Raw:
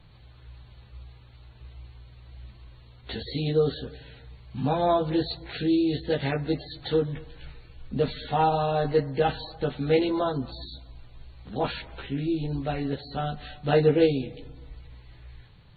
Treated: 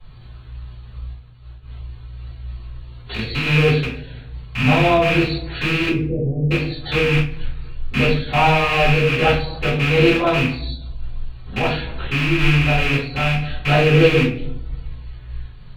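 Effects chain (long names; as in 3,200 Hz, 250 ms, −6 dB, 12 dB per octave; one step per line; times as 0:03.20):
loose part that buzzes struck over −33 dBFS, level −16 dBFS
0:01.00–0:01.71: downward expander −43 dBFS
0:05.88–0:06.51: inverse Chebyshev low-pass filter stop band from 1,200 Hz, stop band 50 dB
rectangular room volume 53 cubic metres, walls mixed, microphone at 3.4 metres
amplitude modulation by smooth noise, depth 50%
level −4 dB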